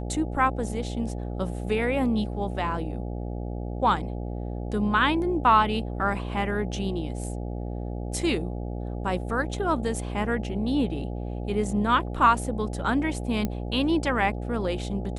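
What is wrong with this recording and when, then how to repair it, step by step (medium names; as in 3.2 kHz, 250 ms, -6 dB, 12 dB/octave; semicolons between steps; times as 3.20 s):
buzz 60 Hz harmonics 14 -32 dBFS
13.45 s: pop -14 dBFS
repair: de-click; de-hum 60 Hz, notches 14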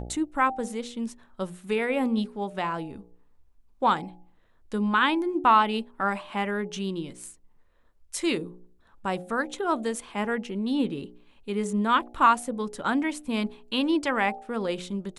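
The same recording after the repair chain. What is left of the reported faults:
nothing left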